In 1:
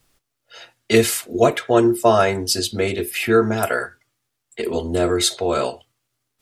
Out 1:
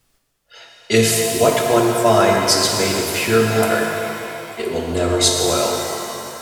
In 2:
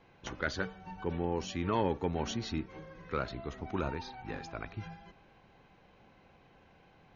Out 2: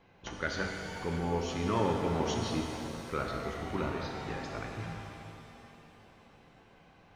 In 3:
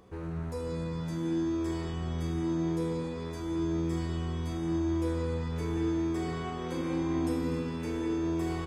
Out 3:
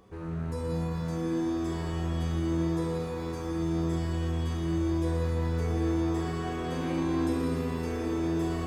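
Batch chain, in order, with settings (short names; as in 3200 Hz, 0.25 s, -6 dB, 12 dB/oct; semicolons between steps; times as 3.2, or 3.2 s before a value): dynamic EQ 6100 Hz, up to +6 dB, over -42 dBFS, Q 1; shimmer reverb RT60 2.9 s, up +7 st, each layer -8 dB, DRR 0.5 dB; gain -1 dB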